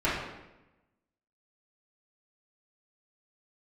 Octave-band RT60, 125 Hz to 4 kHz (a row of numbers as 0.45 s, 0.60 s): 1.1 s, 1.2 s, 1.0 s, 0.95 s, 0.90 s, 0.75 s